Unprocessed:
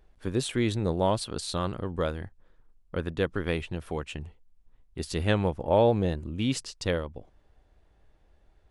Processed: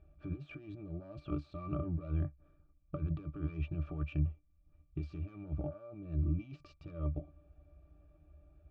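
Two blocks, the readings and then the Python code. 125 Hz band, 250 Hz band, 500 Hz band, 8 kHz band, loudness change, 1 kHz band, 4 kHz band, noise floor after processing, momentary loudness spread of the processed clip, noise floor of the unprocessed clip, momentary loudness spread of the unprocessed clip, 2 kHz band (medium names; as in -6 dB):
-5.0 dB, -10.5 dB, -20.5 dB, under -40 dB, -11.0 dB, -20.5 dB, under -25 dB, -69 dBFS, 12 LU, -63 dBFS, 15 LU, -20.0 dB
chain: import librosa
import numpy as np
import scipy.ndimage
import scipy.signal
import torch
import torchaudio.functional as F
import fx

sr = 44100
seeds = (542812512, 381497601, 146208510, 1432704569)

y = fx.self_delay(x, sr, depth_ms=0.25)
y = fx.high_shelf(y, sr, hz=2800.0, db=8.5)
y = fx.over_compress(y, sr, threshold_db=-36.0, ratio=-1.0)
y = fx.air_absorb(y, sr, metres=160.0)
y = fx.octave_resonator(y, sr, note='D', decay_s=0.11)
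y = F.gain(torch.from_numpy(y), 3.5).numpy()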